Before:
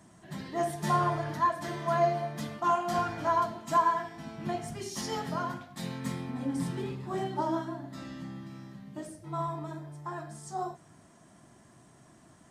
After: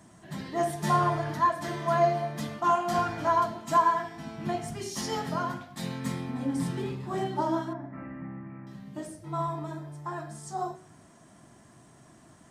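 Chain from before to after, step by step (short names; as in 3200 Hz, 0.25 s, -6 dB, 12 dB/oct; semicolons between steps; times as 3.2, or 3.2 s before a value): 7.73–8.67 elliptic low-pass 2300 Hz, stop band 40 dB; de-hum 184.9 Hz, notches 35; gain +2.5 dB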